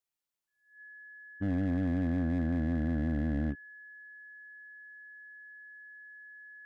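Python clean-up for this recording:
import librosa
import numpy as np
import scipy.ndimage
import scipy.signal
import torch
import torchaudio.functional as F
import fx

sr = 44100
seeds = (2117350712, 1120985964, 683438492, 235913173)

y = fx.fix_declip(x, sr, threshold_db=-26.0)
y = fx.notch(y, sr, hz=1700.0, q=30.0)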